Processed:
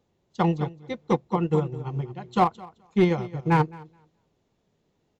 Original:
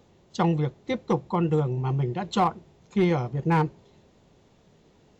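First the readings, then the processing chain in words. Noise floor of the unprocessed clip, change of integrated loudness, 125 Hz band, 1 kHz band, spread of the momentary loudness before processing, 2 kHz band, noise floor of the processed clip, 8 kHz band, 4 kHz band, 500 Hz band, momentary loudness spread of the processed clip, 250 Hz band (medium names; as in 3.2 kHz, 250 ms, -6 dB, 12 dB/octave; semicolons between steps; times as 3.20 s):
-60 dBFS, +0.5 dB, -1.0 dB, +1.5 dB, 6 LU, +1.0 dB, -73 dBFS, no reading, -2.5 dB, +1.0 dB, 9 LU, +0.5 dB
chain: feedback delay 213 ms, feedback 17%, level -9 dB; upward expansion 2.5:1, over -30 dBFS; trim +4 dB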